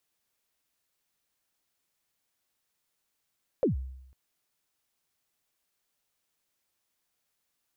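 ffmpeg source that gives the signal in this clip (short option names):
-f lavfi -i "aevalsrc='0.106*pow(10,-3*t/0.83)*sin(2*PI*(590*0.126/log(65/590)*(exp(log(65/590)*min(t,0.126)/0.126)-1)+65*max(t-0.126,0)))':d=0.5:s=44100"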